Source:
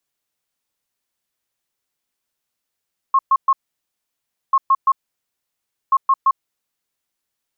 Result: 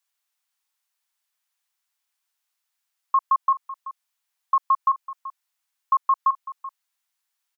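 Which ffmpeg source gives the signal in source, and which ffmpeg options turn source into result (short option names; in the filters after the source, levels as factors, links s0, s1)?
-f lavfi -i "aevalsrc='0.316*sin(2*PI*1080*t)*clip(min(mod(mod(t,1.39),0.17),0.05-mod(mod(t,1.39),0.17))/0.005,0,1)*lt(mod(t,1.39),0.51)':d=4.17:s=44100"
-af "highpass=f=790:w=0.5412,highpass=f=790:w=1.3066,acompressor=threshold=0.141:ratio=3,aecho=1:1:381:0.168"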